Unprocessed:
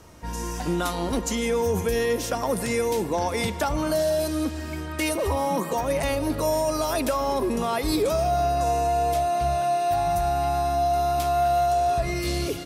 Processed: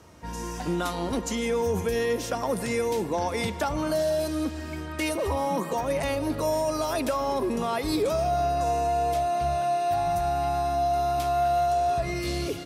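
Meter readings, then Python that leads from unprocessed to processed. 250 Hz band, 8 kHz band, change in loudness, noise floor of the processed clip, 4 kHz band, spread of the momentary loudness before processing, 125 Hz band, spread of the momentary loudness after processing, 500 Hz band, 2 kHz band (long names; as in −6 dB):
−2.0 dB, −4.5 dB, −2.0 dB, −35 dBFS, −3.0 dB, 4 LU, −3.0 dB, 4 LU, −2.0 dB, −2.5 dB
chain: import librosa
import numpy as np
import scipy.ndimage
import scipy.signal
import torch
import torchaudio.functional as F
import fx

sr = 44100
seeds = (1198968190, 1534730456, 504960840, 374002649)

y = scipy.signal.sosfilt(scipy.signal.butter(2, 60.0, 'highpass', fs=sr, output='sos'), x)
y = fx.high_shelf(y, sr, hz=8600.0, db=-6.0)
y = y * 10.0 ** (-2.0 / 20.0)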